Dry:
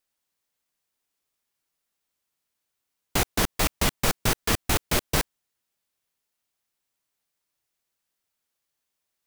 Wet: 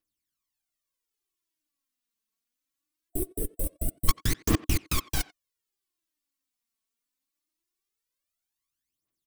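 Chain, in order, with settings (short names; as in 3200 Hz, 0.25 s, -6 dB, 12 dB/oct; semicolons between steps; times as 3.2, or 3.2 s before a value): bell 770 Hz -8 dB 2.4 oct; small resonant body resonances 310/1100 Hz, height 10 dB, ringing for 40 ms; level quantiser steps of 10 dB; spectral gain 3.09–4.08, 710–7800 Hz -25 dB; phaser 0.22 Hz, delay 4.6 ms, feedback 72%; speakerphone echo 90 ms, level -19 dB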